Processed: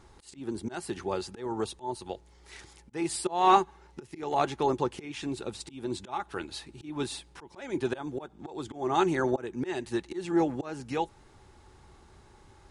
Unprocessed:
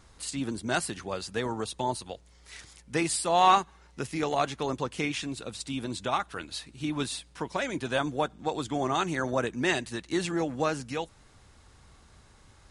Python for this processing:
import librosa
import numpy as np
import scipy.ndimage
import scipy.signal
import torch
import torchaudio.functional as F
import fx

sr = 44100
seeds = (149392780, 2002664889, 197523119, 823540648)

y = fx.high_shelf(x, sr, hz=2800.0, db=-4.5)
y = fx.auto_swell(y, sr, attack_ms=281.0)
y = fx.small_body(y, sr, hz=(370.0, 840.0), ring_ms=50, db=11)